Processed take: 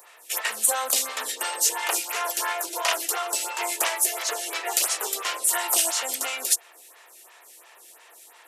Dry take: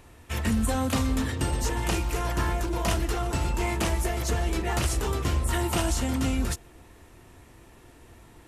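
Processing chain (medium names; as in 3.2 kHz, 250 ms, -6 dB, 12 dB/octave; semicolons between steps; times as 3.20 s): high-pass 460 Hz 24 dB/octave; tilt EQ +3.5 dB/octave; lamp-driven phase shifter 2.9 Hz; trim +5.5 dB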